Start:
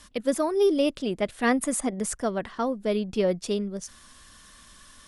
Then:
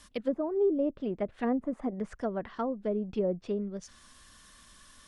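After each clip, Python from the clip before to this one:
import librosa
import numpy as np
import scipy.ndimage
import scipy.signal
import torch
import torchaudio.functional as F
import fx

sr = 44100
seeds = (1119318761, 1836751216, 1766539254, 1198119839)

y = fx.env_lowpass_down(x, sr, base_hz=670.0, full_db=-21.5)
y = y * librosa.db_to_amplitude(-4.5)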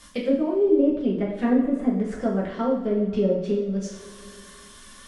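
y = fx.rev_double_slope(x, sr, seeds[0], early_s=0.58, late_s=2.9, knee_db=-18, drr_db=-4.5)
y = fx.dynamic_eq(y, sr, hz=890.0, q=1.2, threshold_db=-42.0, ratio=4.0, max_db=-6)
y = y * librosa.db_to_amplitude(3.5)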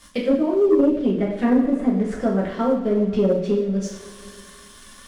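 y = fx.leveller(x, sr, passes=1)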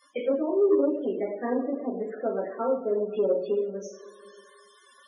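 y = fx.ladder_highpass(x, sr, hz=290.0, resonance_pct=25)
y = fx.spec_topn(y, sr, count=32)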